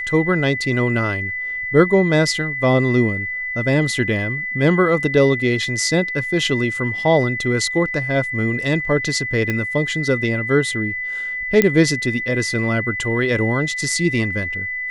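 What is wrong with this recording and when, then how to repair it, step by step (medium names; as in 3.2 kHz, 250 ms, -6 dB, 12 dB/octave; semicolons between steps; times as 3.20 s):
whine 2 kHz -23 dBFS
9.50 s: pop -9 dBFS
11.62 s: pop -2 dBFS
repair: de-click; band-stop 2 kHz, Q 30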